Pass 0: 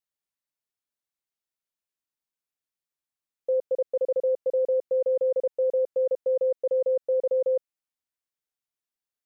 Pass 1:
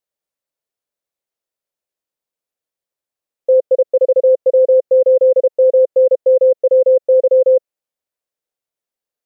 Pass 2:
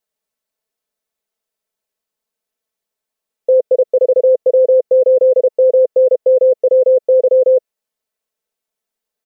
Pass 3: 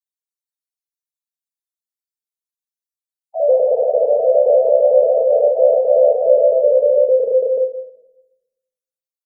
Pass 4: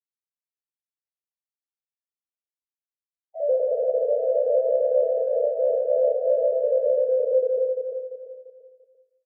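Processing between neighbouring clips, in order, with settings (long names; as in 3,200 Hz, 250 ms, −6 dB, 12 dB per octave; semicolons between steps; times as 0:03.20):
parametric band 530 Hz +11 dB 0.91 octaves; level +2.5 dB
comb filter 4.6 ms, depth 78%; level +3 dB
spectral dynamics exaggerated over time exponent 3; delay with pitch and tempo change per echo 292 ms, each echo +2 semitones, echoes 3, each echo −6 dB; rectangular room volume 320 cubic metres, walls mixed, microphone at 0.63 metres; level −2 dB
gap after every zero crossing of 0.14 ms; flat-topped band-pass 490 Hz, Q 1.8; on a send: repeating echo 343 ms, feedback 35%, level −7 dB; on the sum: level −8 dB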